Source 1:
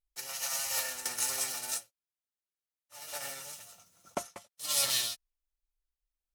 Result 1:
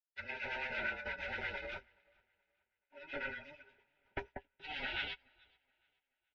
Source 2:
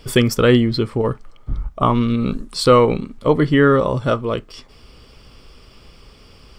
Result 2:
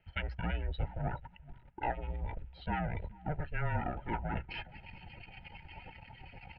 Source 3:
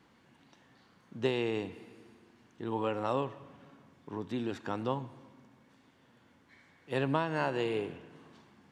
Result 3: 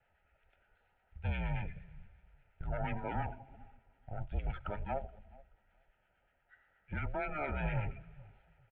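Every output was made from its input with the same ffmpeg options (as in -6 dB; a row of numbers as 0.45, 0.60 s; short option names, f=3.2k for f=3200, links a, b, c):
-filter_complex "[0:a]acrusher=bits=6:mode=log:mix=0:aa=0.000001,areverse,acompressor=threshold=-30dB:ratio=16,areverse,aeval=exprs='(tanh(63.1*val(0)+0.8)-tanh(0.8))/63.1':c=same,acrossover=split=1400[a][b];[a]aeval=exprs='val(0)*(1-0.5/2+0.5/2*cos(2*PI*8.5*n/s))':c=same[c];[b]aeval=exprs='val(0)*(1-0.5/2-0.5/2*cos(2*PI*8.5*n/s))':c=same[d];[c][d]amix=inputs=2:normalize=0,bandreject=f=60:t=h:w=6,bandreject=f=120:t=h:w=6,bandreject=f=180:t=h:w=6,bandreject=f=240:t=h:w=6,bandreject=f=300:t=h:w=6,bandreject=f=360:t=h:w=6,aecho=1:1:426|852|1278:0.119|0.0428|0.0154,asubboost=boost=8:cutoff=61,asuperstop=centerf=1400:order=12:qfactor=5.6,afftdn=nr=13:nf=-54,highpass=f=250:t=q:w=0.5412,highpass=f=250:t=q:w=1.307,lowpass=f=3k:t=q:w=0.5176,lowpass=f=3k:t=q:w=0.7071,lowpass=f=3k:t=q:w=1.932,afreqshift=-300,equalizer=f=250:t=o:w=1.5:g=-11.5,volume=14.5dB"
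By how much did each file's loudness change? -9.0, -21.5, -5.0 LU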